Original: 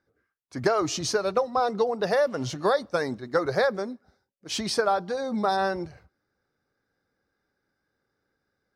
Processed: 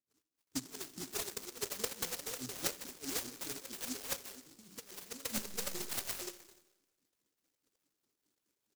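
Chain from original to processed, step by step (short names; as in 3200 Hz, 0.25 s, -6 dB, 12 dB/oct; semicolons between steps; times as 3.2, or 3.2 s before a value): low shelf 230 Hz +5.5 dB; de-hum 47.69 Hz, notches 8; compressor 2.5:1, threshold -37 dBFS, peak gain reduction 13 dB; wah 4.8 Hz 280–1500 Hz, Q 4.7; 5.36–5.8 LPC vocoder at 8 kHz pitch kept; three bands offset in time lows, highs, mids 0.15/0.47 s, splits 380/1500 Hz; on a send at -13.5 dB: reverb RT60 1.1 s, pre-delay 5 ms; on the sum: noise-modulated delay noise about 6000 Hz, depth 0.45 ms; gain +5.5 dB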